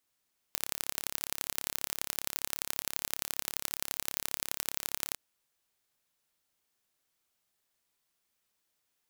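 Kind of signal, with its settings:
impulse train 34.8 per second, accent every 3, −3.5 dBFS 4.62 s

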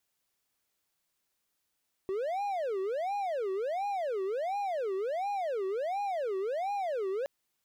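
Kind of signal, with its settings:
siren wail 378–818 Hz 1.4 per second triangle −28 dBFS 5.17 s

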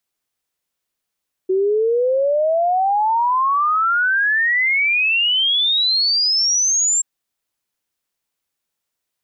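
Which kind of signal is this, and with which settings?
exponential sine sweep 370 Hz → 7,500 Hz 5.53 s −14 dBFS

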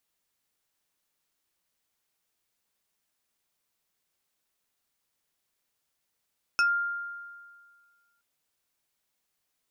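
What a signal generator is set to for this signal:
two-operator FM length 1.62 s, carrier 1,400 Hz, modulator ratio 2.84, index 1.1, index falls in 0.15 s exponential, decay 1.80 s, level −19 dB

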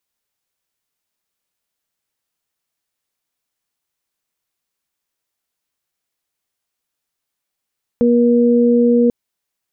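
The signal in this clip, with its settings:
steady harmonic partials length 1.09 s, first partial 239 Hz, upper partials −1.5 dB, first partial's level −11.5 dB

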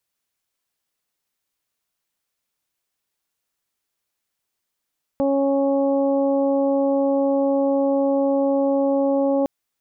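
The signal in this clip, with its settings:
steady harmonic partials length 4.26 s, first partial 276 Hz, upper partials 1/−9/−19 dB, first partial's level −20 dB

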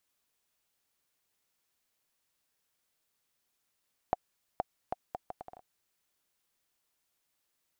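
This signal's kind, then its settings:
bouncing ball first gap 0.47 s, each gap 0.69, 735 Hz, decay 25 ms −14 dBFS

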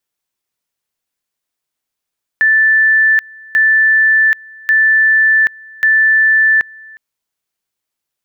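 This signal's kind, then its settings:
tone at two levels in turn 1,760 Hz −7 dBFS, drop 26 dB, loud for 0.78 s, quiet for 0.36 s, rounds 4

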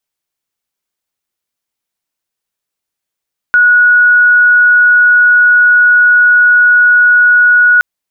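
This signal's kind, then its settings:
tone sine 1,460 Hz −3.5 dBFS 4.27 s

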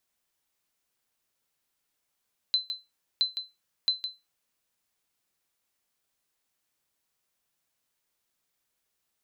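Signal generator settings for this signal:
ping with an echo 4,050 Hz, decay 0.22 s, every 0.67 s, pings 3, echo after 0.16 s, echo −9 dB −16.5 dBFS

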